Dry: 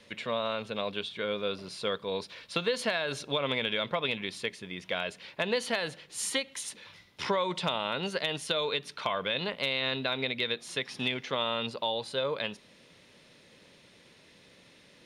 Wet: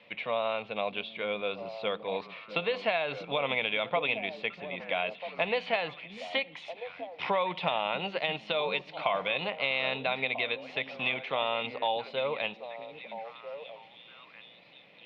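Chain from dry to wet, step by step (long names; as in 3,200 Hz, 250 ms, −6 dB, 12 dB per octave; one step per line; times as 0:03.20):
loudspeaker in its box 160–3,300 Hz, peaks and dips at 240 Hz −7 dB, 380 Hz −6 dB, 750 Hz +9 dB, 1,600 Hz −7 dB, 2,400 Hz +7 dB
echo through a band-pass that steps 646 ms, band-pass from 230 Hz, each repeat 1.4 octaves, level −6.5 dB
Opus 64 kbit/s 48,000 Hz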